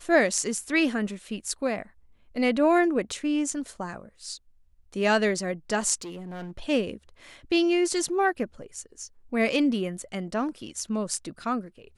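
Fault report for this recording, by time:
0:06.01–0:06.58: clipping −34 dBFS

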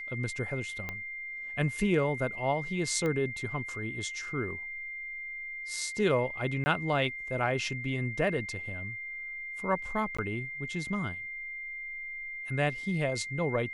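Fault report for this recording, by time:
whistle 2,100 Hz −37 dBFS
0:00.89: click −21 dBFS
0:03.06: click −21 dBFS
0:06.64–0:06.66: drop-out 20 ms
0:10.17–0:10.19: drop-out 15 ms

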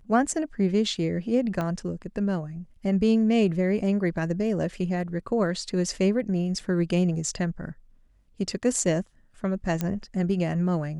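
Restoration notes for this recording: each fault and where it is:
0:01.61: click −17 dBFS
0:06.59: drop-out 3.5 ms
0:09.81: click −13 dBFS

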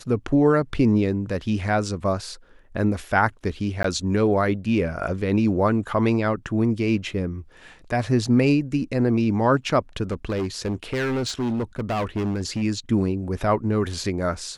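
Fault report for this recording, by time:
0:03.83–0:03.84: drop-out 13 ms
0:10.11–0:12.63: clipping −21.5 dBFS

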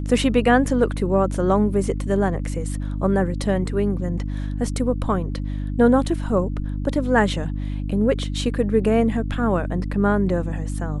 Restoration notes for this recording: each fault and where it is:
mains hum 50 Hz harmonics 6 −26 dBFS

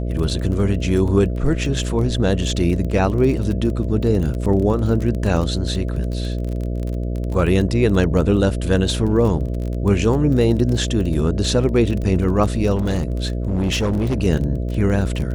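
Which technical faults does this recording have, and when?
mains buzz 60 Hz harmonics 11 −23 dBFS
surface crackle 24 per second −24 dBFS
0:12.75–0:14.24: clipping −15.5 dBFS

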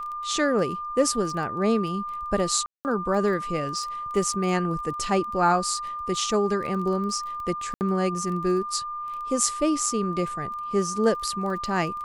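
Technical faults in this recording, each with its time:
surface crackle 16 per second −33 dBFS
whistle 1,200 Hz −30 dBFS
0:02.66–0:02.85: drop-out 189 ms
0:07.74–0:07.81: drop-out 69 ms

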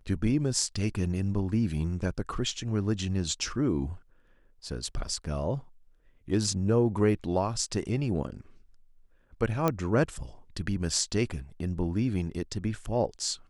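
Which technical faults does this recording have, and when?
0:09.68: click −12 dBFS

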